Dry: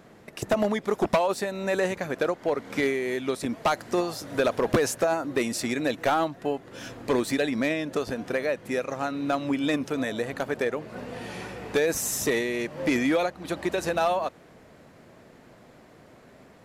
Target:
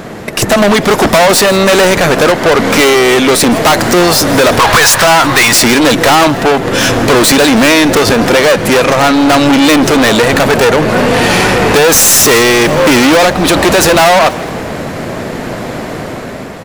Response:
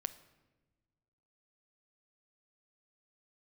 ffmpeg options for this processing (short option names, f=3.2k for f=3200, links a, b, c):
-filter_complex "[0:a]asettb=1/sr,asplit=3[a][b][c];[a]atrim=end=4.594[d];[b]atrim=start=4.59:end=5.53,asetpts=PTS-STARTPTS,afade=t=in:d=0.004:c=qsin,afade=t=out:st=0.936:d=0.004:c=qsin,equalizer=f=250:t=o:w=1:g=-11,equalizer=f=500:t=o:w=1:g=-6,equalizer=f=1k:t=o:w=1:g=10,equalizer=f=2k:t=o:w=1:g=4,equalizer=f=4k:t=o:w=1:g=7[e];[c]atrim=start=5.526[f];[d][e]acrossfade=d=0.004:c1=hsin:c2=qsin[g];[g][f]acrossfade=d=0.004:c1=qsin:c2=hsin,dynaudnorm=f=160:g=9:m=6dB,aeval=exprs='(tanh(20*val(0)+0.7)-tanh(0.7))/20':c=same,apsyclip=34.5dB,asplit=2[h][i];[i]asplit=5[j][k][l][m][n];[j]adelay=162,afreqshift=44,volume=-18dB[o];[k]adelay=324,afreqshift=88,volume=-23dB[p];[l]adelay=486,afreqshift=132,volume=-28.1dB[q];[m]adelay=648,afreqshift=176,volume=-33.1dB[r];[n]adelay=810,afreqshift=220,volume=-38.1dB[s];[o][p][q][r][s]amix=inputs=5:normalize=0[t];[h][t]amix=inputs=2:normalize=0,volume=-4dB"